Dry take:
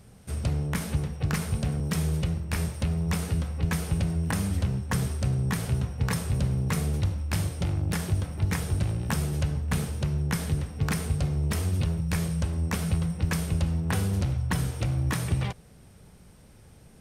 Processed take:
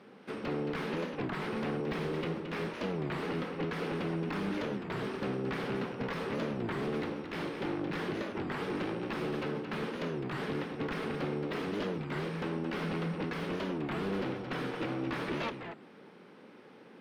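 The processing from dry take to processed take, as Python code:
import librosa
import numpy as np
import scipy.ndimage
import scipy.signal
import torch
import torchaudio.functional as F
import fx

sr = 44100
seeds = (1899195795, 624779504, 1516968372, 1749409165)

p1 = scipy.signal.sosfilt(scipy.signal.butter(4, 260.0, 'highpass', fs=sr, output='sos'), x)
p2 = fx.peak_eq(p1, sr, hz=670.0, db=-8.5, octaves=0.36)
p3 = fx.over_compress(p2, sr, threshold_db=-38.0, ratio=-1.0)
p4 = p2 + (p3 * 10.0 ** (2.0 / 20.0))
p5 = 10.0 ** (-26.5 / 20.0) * (np.abs((p4 / 10.0 ** (-26.5 / 20.0) + 3.0) % 4.0 - 2.0) - 1.0)
p6 = fx.air_absorb(p5, sr, metres=350.0)
p7 = p6 + 10.0 ** (-8.0 / 20.0) * np.pad(p6, (int(222 * sr / 1000.0), 0))[:len(p6)]
y = fx.record_warp(p7, sr, rpm=33.33, depth_cents=250.0)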